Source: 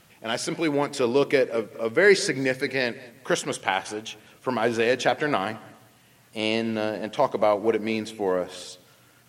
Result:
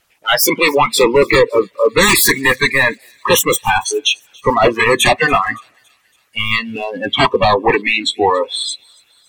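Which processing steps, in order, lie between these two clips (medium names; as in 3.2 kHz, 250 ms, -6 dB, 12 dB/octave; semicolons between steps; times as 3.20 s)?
self-modulated delay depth 0.33 ms; harmonic-percussive split harmonic -15 dB; peaking EQ 190 Hz -11 dB 2.4 oct; in parallel at -0.5 dB: compression, threshold -43 dBFS, peak gain reduction 21.5 dB; on the sum: sine folder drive 20 dB, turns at -4.5 dBFS; spectral noise reduction 28 dB; on a send: feedback echo behind a high-pass 281 ms, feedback 53%, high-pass 3.5 kHz, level -24 dB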